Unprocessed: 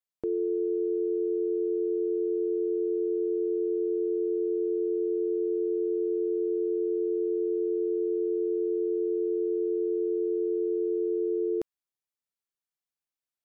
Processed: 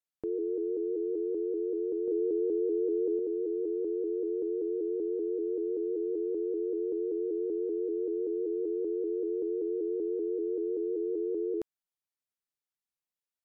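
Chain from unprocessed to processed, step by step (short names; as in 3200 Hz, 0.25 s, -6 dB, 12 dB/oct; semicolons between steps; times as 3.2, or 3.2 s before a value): 2.07–3.19 comb 6.4 ms, depth 76%; shaped vibrato saw up 5.2 Hz, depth 100 cents; gain -4 dB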